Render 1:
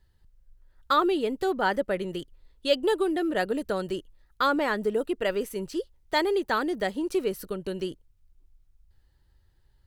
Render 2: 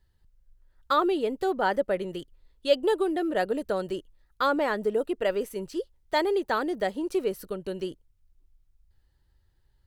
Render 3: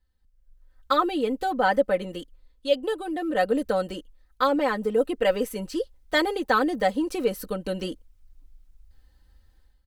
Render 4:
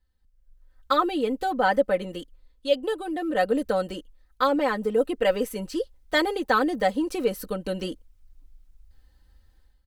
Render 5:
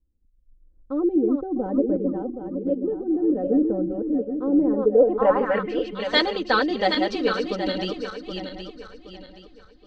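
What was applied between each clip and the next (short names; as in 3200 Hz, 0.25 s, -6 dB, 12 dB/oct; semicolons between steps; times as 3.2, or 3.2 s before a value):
dynamic EQ 610 Hz, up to +5 dB, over -36 dBFS, Q 0.98; gain -3 dB
comb 3.9 ms, depth 82%; AGC gain up to 14 dB; gain -8 dB
nothing audible
regenerating reverse delay 0.386 s, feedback 57%, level -4 dB; low-pass sweep 330 Hz -> 4200 Hz, 4.66–6.08; inverse Chebyshev low-pass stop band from 12000 Hz, stop band 40 dB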